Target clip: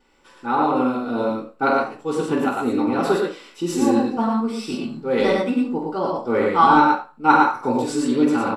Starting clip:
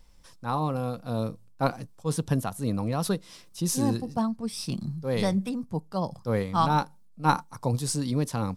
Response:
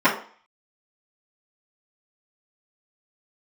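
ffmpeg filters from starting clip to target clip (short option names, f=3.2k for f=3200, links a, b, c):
-filter_complex "[0:a]aecho=1:1:47|95|114|183:0.473|0.473|0.668|0.158[a];[1:a]atrim=start_sample=2205,asetrate=61740,aresample=44100[b];[a][b]afir=irnorm=-1:irlink=0,volume=-11dB"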